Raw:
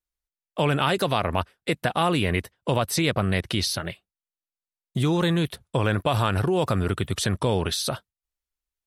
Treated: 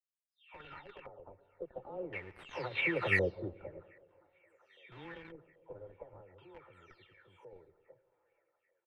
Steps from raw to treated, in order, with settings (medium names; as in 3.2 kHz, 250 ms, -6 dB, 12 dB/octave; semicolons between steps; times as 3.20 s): delay that grows with frequency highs early, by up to 450 ms; Doppler pass-by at 3.20 s, 11 m/s, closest 3.1 m; comb 2.2 ms, depth 65%; dynamic bell 1.2 kHz, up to -6 dB, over -42 dBFS, Q 1.1; in parallel at -5.5 dB: Schmitt trigger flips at -35 dBFS; on the sum: bass shelf 290 Hz -11.5 dB; on a send at -16.5 dB: reverberation RT60 1.7 s, pre-delay 92 ms; on the sum: LFO low-pass square 0.47 Hz 580–2200 Hz; feedback echo behind a band-pass 788 ms, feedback 70%, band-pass 950 Hz, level -24 dB; upward expansion 1.5:1, over -38 dBFS; trim -2 dB